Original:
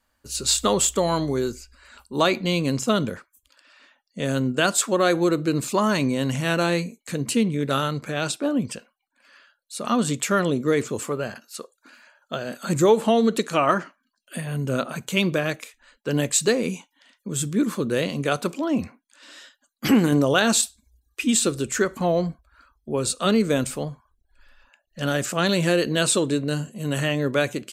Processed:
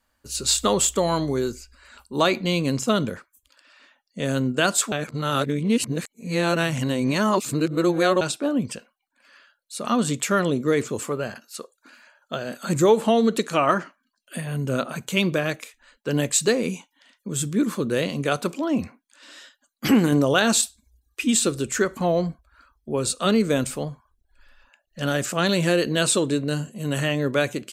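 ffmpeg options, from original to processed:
ffmpeg -i in.wav -filter_complex "[0:a]asplit=3[link_01][link_02][link_03];[link_01]atrim=end=4.922[link_04];[link_02]atrim=start=4.918:end=8.212,asetpts=PTS-STARTPTS,areverse[link_05];[link_03]atrim=start=8.208[link_06];[link_04][link_05]acrossfade=duration=0.004:curve1=hsin:curve2=hsin[link_07];[link_07][link_06]acrossfade=duration=0.004:curve1=hsin:curve2=hsin" out.wav

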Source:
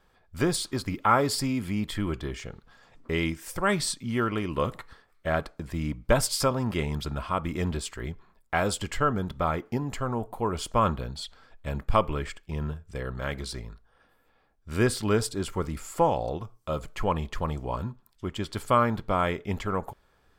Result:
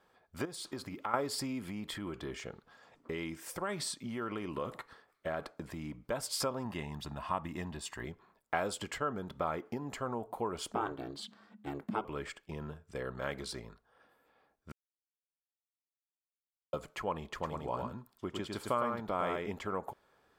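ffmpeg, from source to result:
ffmpeg -i in.wav -filter_complex "[0:a]asettb=1/sr,asplit=3[link_01][link_02][link_03];[link_01]atrim=end=0.454[link_04];[link_02]atrim=start=0.45:end=1.14,asetpts=PTS-STARTPTS,afade=type=in:duration=0.004:curve=qsin,afade=type=out:start_time=0.686:duration=0.004:curve=qsin,acompressor=threshold=-32dB:ratio=6:attack=3.2:release=140:knee=1:detection=peak[link_05];[link_03]atrim=start=1.136[link_06];[link_04][link_05]acrossfade=duration=0.004:curve1=hsin:curve2=qsin[link_07];[link_07][link_06]acrossfade=duration=0.004:curve1=qsin:curve2=hsin,asettb=1/sr,asplit=3[link_08][link_09][link_10];[link_08]atrim=end=1.694[link_11];[link_09]atrim=start=1.69:end=6.08,asetpts=PTS-STARTPTS,afade=type=in:duration=0.004:curve=qsin,afade=type=out:start_time=4.386:duration=0.004:curve=qsin,acompressor=threshold=-28dB:ratio=6:attack=3.2:release=140:knee=1:detection=peak[link_12];[link_10]atrim=start=6.076[link_13];[link_11][link_12]acrossfade=duration=0.004:curve1=hsin:curve2=qsin[link_14];[link_14][link_13]acrossfade=duration=0.004:curve1=qsin:curve2=hsin,asettb=1/sr,asplit=3[link_15][link_16][link_17];[link_15]atrim=end=6.654[link_18];[link_16]atrim=start=6.65:end=8.04,asetpts=PTS-STARTPTS,afade=type=in:duration=0.004:curve=qsin,afade=type=out:start_time=1.386:duration=0.004:curve=qsin,aecho=1:1:1.1:0.52,atrim=end_sample=61299[link_19];[link_17]atrim=start=8.036[link_20];[link_18][link_19]acrossfade=duration=0.004:curve1=hsin:curve2=qsin[link_21];[link_21][link_20]acrossfade=duration=0.004:curve1=qsin:curve2=hsin,asettb=1/sr,asplit=3[link_22][link_23][link_24];[link_22]atrim=end=10.724[link_25];[link_23]atrim=start=10.72:end=12.05,asetpts=PTS-STARTPTS,afade=type=in:duration=0.004:curve=qsin,afade=type=out:start_time=1.326:duration=0.004:curve=qsin,aeval=exprs='val(0)*sin(2*PI*210*n/s)':channel_layout=same[link_26];[link_24]atrim=start=12.046[link_27];[link_25][link_26]acrossfade=duration=0.004:curve1=hsin:curve2=qsin[link_28];[link_28][link_27]acrossfade=duration=0.004:curve1=qsin:curve2=hsin,asettb=1/sr,asplit=3[link_29][link_30][link_31];[link_29]atrim=end=17.294[link_32];[link_30]atrim=start=17.29:end=19.52,asetpts=PTS-STARTPTS,afade=type=in:duration=0.004:curve=qsin,afade=type=out:start_time=2.226:duration=0.004:curve=qsin,aecho=1:1:106:0.596,atrim=end_sample=98343[link_33];[link_31]atrim=start=19.516[link_34];[link_32][link_33]acrossfade=duration=0.004:curve1=hsin:curve2=qsin[link_35];[link_35][link_34]acrossfade=duration=0.004:curve1=qsin:curve2=hsin,asplit=3[link_36][link_37][link_38];[link_36]atrim=end=14.72,asetpts=PTS-STARTPTS,afade=type=out:start_time=14.716:duration=0.004:curve=hsin[link_39];[link_37]atrim=start=14.72:end=16.73,asetpts=PTS-STARTPTS,volume=0[link_40];[link_38]atrim=start=16.73,asetpts=PTS-STARTPTS,afade=type=in:duration=0.004:curve=hsin[link_41];[link_39][link_40][link_41]concat=n=3:v=0:a=1,tiltshelf=frequency=970:gain=5,acompressor=threshold=-26dB:ratio=5,highpass=frequency=600:poles=1" out.wav

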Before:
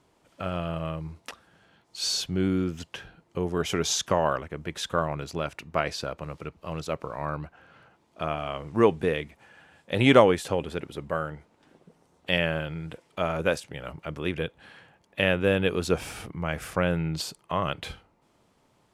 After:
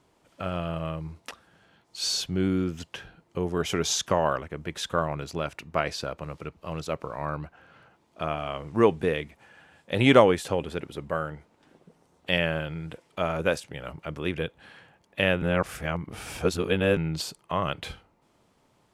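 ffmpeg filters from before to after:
ffmpeg -i in.wav -filter_complex "[0:a]asplit=3[link_01][link_02][link_03];[link_01]atrim=end=15.422[link_04];[link_02]atrim=start=15.418:end=16.972,asetpts=PTS-STARTPTS,areverse[link_05];[link_03]atrim=start=16.968[link_06];[link_04][link_05]acrossfade=duration=0.004:curve1=hsin:curve2=hsin[link_07];[link_07][link_06]acrossfade=duration=0.004:curve1=hsin:curve2=hsin" out.wav

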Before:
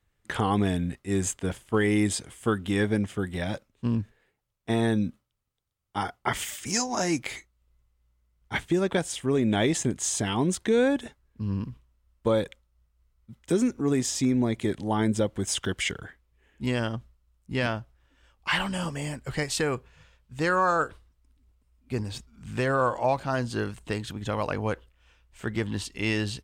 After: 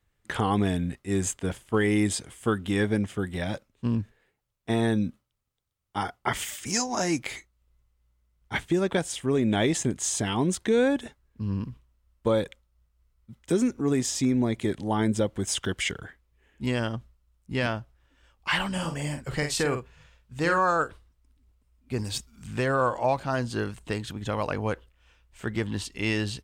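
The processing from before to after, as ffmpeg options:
ffmpeg -i in.wav -filter_complex "[0:a]asettb=1/sr,asplit=3[link_01][link_02][link_03];[link_01]atrim=end=18.714[link_04];[link_02]atrim=start=18.71:end=20.58,asetpts=PTS-STARTPTS,afade=type=in:duration=0.004:curve=qsin,afade=type=out:start_time=1.866:duration=0.004:curve=qsin,asplit=2[link_05][link_06];[link_06]adelay=48,volume=-7dB[link_07];[link_05][link_07]amix=inputs=2:normalize=0,atrim=end_sample=82467[link_08];[link_03]atrim=start=20.576[link_09];[link_04][link_08]acrossfade=duration=0.004:curve1=hsin:curve2=qsin[link_10];[link_10][link_09]acrossfade=duration=0.004:curve1=qsin:curve2=hsin,asettb=1/sr,asplit=3[link_11][link_12][link_13];[link_11]atrim=end=21.994[link_14];[link_12]atrim=start=21.99:end=22.47,asetpts=PTS-STARTPTS,afade=type=in:duration=0.004:curve=qsin,afade=type=out:start_time=0.476:duration=0.004:curve=qsin,highshelf=frequency=3500:gain=12[link_15];[link_13]atrim=start=22.466[link_16];[link_14][link_15]acrossfade=duration=0.004:curve1=hsin:curve2=qsin[link_17];[link_17][link_16]acrossfade=duration=0.004:curve1=qsin:curve2=hsin" out.wav

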